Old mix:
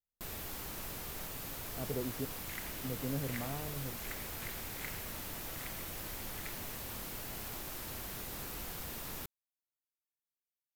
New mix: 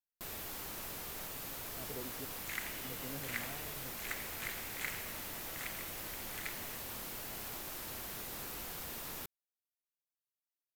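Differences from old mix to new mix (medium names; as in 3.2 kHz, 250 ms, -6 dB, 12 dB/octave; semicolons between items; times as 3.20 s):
speech -7.0 dB; second sound +5.5 dB; master: add bass shelf 190 Hz -7 dB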